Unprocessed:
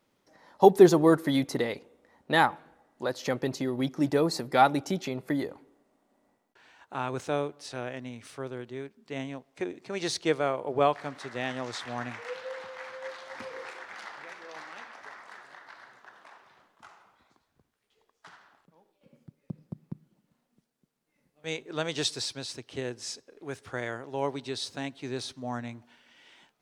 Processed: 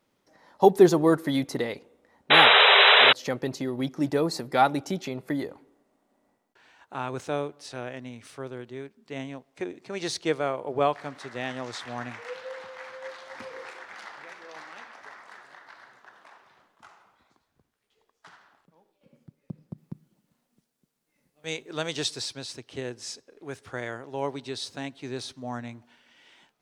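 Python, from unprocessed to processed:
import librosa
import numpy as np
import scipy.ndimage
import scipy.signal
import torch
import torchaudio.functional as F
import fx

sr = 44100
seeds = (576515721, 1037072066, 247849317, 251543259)

y = fx.spec_paint(x, sr, seeds[0], shape='noise', start_s=2.3, length_s=0.83, low_hz=390.0, high_hz=4000.0, level_db=-16.0)
y = fx.high_shelf(y, sr, hz=4000.0, db=6.0, at=(19.78, 21.97))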